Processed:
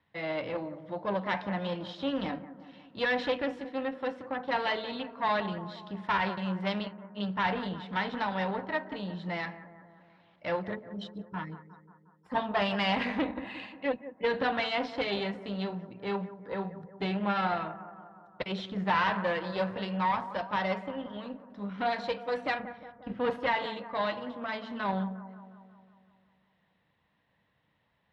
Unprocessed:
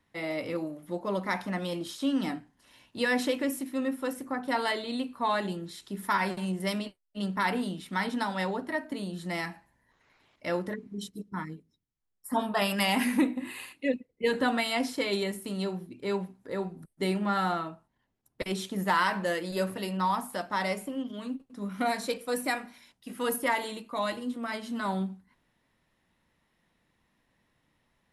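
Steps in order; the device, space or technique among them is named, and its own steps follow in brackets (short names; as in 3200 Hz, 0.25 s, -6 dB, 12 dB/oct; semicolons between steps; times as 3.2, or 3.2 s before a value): 22.59–23.3 RIAA curve playback; analogue delay pedal into a guitar amplifier (analogue delay 0.179 s, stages 2048, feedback 61%, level -14 dB; tube stage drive 24 dB, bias 0.7; speaker cabinet 79–3800 Hz, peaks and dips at 250 Hz -8 dB, 360 Hz -7 dB, 1300 Hz -3 dB, 2300 Hz -3 dB); gain +5 dB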